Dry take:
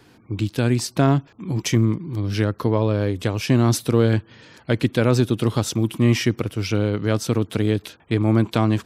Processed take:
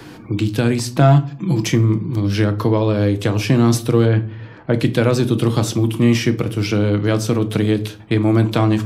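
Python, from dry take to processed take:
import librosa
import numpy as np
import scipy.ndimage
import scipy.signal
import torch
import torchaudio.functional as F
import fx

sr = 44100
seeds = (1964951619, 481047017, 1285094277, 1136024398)

y = fx.comb(x, sr, ms=5.9, depth=0.7, at=(1.0, 1.61))
y = fx.lowpass(y, sr, hz=fx.line((4.05, 2900.0), (4.73, 1300.0)), slope=12, at=(4.05, 4.73), fade=0.02)
y = fx.room_shoebox(y, sr, seeds[0], volume_m3=290.0, walls='furnished', distance_m=0.66)
y = fx.band_squash(y, sr, depth_pct=40)
y = y * librosa.db_to_amplitude(2.5)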